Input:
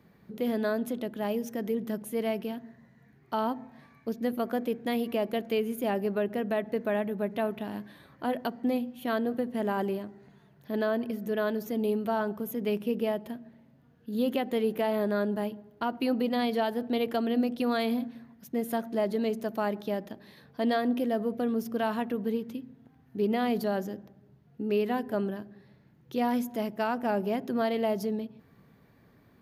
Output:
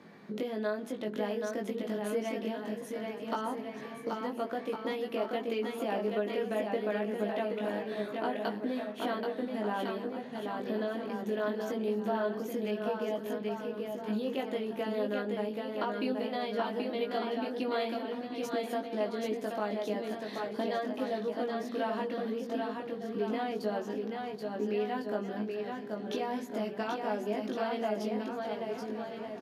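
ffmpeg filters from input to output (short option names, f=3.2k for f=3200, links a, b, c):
-filter_complex "[0:a]acompressor=threshold=-41dB:ratio=5,highpass=240,lowpass=7.4k,asplit=2[a][b];[b]adelay=19,volume=-3dB[c];[a][c]amix=inputs=2:normalize=0,aecho=1:1:780|1404|1903|2303|2622:0.631|0.398|0.251|0.158|0.1,volume=7.5dB"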